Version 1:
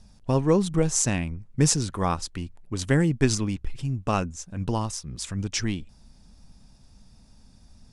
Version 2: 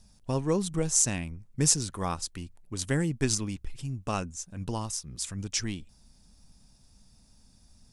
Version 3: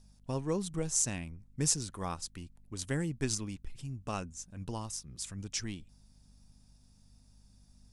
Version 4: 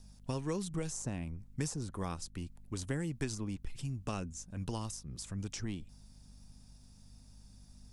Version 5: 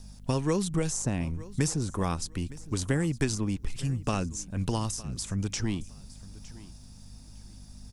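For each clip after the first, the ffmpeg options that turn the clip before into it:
ffmpeg -i in.wav -af "highshelf=frequency=5800:gain=12,volume=-6.5dB" out.wav
ffmpeg -i in.wav -af "aeval=exprs='val(0)+0.00178*(sin(2*PI*50*n/s)+sin(2*PI*2*50*n/s)/2+sin(2*PI*3*50*n/s)/3+sin(2*PI*4*50*n/s)/4+sin(2*PI*5*50*n/s)/5)':channel_layout=same,volume=-6dB" out.wav
ffmpeg -i in.wav -filter_complex "[0:a]acrossover=split=570|1200[link_01][link_02][link_03];[link_01]acompressor=threshold=-39dB:ratio=4[link_04];[link_02]acompressor=threshold=-54dB:ratio=4[link_05];[link_03]acompressor=threshold=-49dB:ratio=4[link_06];[link_04][link_05][link_06]amix=inputs=3:normalize=0,volume=4.5dB" out.wav
ffmpeg -i in.wav -af "aecho=1:1:911|1822:0.112|0.0258,volume=9dB" out.wav

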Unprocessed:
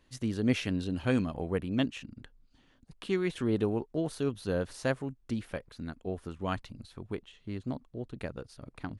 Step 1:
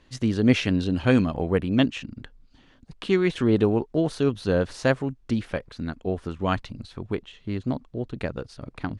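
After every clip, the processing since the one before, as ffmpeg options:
ffmpeg -i in.wav -af "lowpass=6700,volume=8.5dB" out.wav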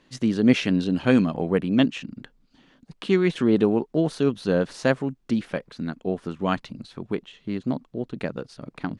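ffmpeg -i in.wav -af "lowshelf=frequency=120:width_type=q:width=1.5:gain=-10" out.wav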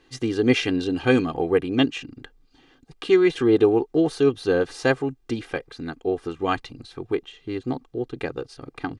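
ffmpeg -i in.wav -af "aecho=1:1:2.5:0.81" out.wav

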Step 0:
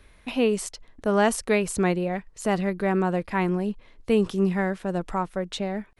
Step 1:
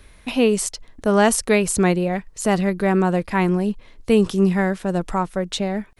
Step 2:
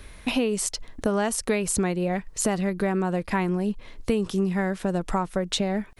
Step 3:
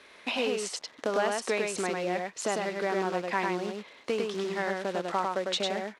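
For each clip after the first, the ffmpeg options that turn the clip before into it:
ffmpeg -i in.wav -af "bass=frequency=250:gain=2,treble=frequency=4000:gain=5,volume=4.5dB" out.wav
ffmpeg -i in.wav -af "acompressor=threshold=-25dB:ratio=6,volume=3.5dB" out.wav
ffmpeg -i in.wav -af "acrusher=bits=4:mode=log:mix=0:aa=0.000001,highpass=410,lowpass=5100,aecho=1:1:101:0.708,volume=-2dB" out.wav

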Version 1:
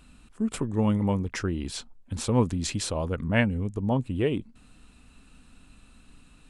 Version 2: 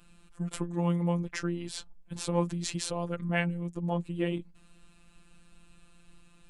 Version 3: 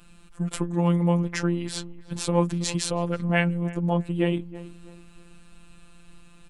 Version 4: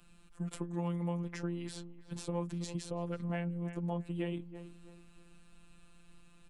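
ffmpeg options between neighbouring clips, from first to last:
ffmpeg -i in.wav -af "afftfilt=real='hypot(re,im)*cos(PI*b)':imag='0':win_size=1024:overlap=0.75" out.wav
ffmpeg -i in.wav -filter_complex "[0:a]asplit=2[link_01][link_02];[link_02]adelay=325,lowpass=frequency=1600:poles=1,volume=-17.5dB,asplit=2[link_03][link_04];[link_04]adelay=325,lowpass=frequency=1600:poles=1,volume=0.34,asplit=2[link_05][link_06];[link_06]adelay=325,lowpass=frequency=1600:poles=1,volume=0.34[link_07];[link_01][link_03][link_05][link_07]amix=inputs=4:normalize=0,volume=6dB" out.wav
ffmpeg -i in.wav -filter_complex "[0:a]acrossover=split=110|750[link_01][link_02][link_03];[link_01]acompressor=threshold=-41dB:ratio=4[link_04];[link_02]acompressor=threshold=-25dB:ratio=4[link_05];[link_03]acompressor=threshold=-36dB:ratio=4[link_06];[link_04][link_05][link_06]amix=inputs=3:normalize=0,volume=-9dB" out.wav

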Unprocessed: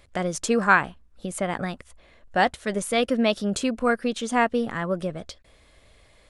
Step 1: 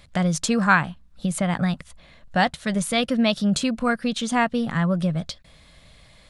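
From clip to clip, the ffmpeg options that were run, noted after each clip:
ffmpeg -i in.wav -filter_complex "[0:a]asplit=2[link_01][link_02];[link_02]acompressor=threshold=-29dB:ratio=6,volume=-3dB[link_03];[link_01][link_03]amix=inputs=2:normalize=0,equalizer=frequency=160:width_type=o:width=0.67:gain=11,equalizer=frequency=400:width_type=o:width=0.67:gain=-8,equalizer=frequency=4000:width_type=o:width=0.67:gain=5,volume=-1dB" out.wav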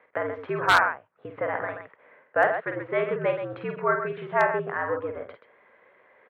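ffmpeg -i in.wav -af "highpass=frequency=390:width_type=q:width=0.5412,highpass=frequency=390:width_type=q:width=1.307,lowpass=frequency=2100:width_type=q:width=0.5176,lowpass=frequency=2100:width_type=q:width=0.7071,lowpass=frequency=2100:width_type=q:width=1.932,afreqshift=-73,aecho=1:1:49|129:0.501|0.355,aeval=exprs='0.355*(abs(mod(val(0)/0.355+3,4)-2)-1)':channel_layout=same" out.wav

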